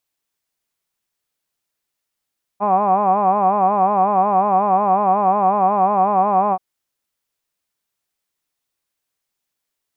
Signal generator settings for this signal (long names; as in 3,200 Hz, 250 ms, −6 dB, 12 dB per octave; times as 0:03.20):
vowel by formant synthesis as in hod, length 3.98 s, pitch 197 Hz, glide 0 semitones, vibrato 5.5 Hz, vibrato depth 1.05 semitones